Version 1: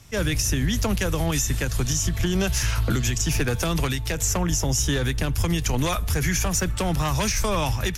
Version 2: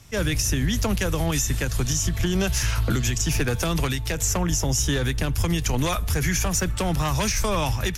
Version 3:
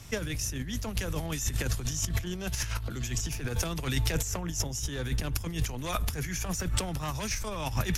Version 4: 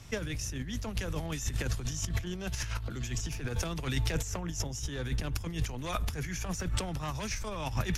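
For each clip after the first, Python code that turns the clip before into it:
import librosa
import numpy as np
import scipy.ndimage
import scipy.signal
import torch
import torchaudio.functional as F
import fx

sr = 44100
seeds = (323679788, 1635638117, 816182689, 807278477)

y1 = x
y2 = fx.over_compress(y1, sr, threshold_db=-27.0, ratio=-0.5)
y2 = y2 * librosa.db_to_amplitude(-3.0)
y3 = fx.high_shelf(y2, sr, hz=9700.0, db=-11.5)
y3 = y3 * librosa.db_to_amplitude(-2.0)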